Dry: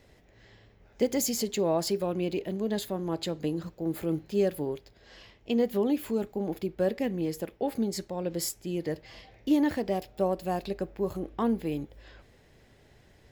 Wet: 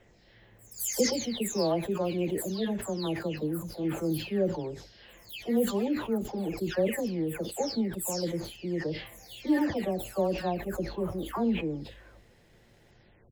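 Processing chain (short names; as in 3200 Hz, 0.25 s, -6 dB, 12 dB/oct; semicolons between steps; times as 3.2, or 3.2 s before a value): spectral delay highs early, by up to 0.409 s; sustainer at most 99 dB/s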